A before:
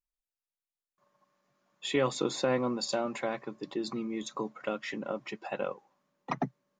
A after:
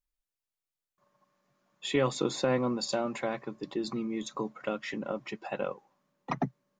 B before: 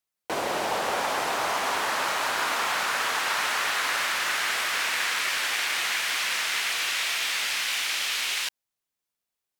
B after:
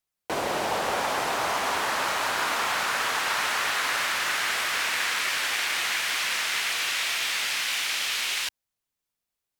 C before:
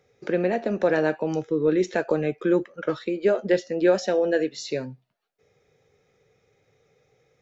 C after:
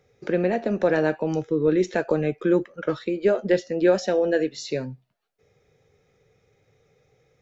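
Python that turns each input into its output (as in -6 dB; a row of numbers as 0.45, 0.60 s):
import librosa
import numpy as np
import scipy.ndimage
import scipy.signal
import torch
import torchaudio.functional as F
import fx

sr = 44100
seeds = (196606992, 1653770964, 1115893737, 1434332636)

y = fx.low_shelf(x, sr, hz=130.0, db=7.5)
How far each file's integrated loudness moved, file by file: +0.5, 0.0, +0.5 LU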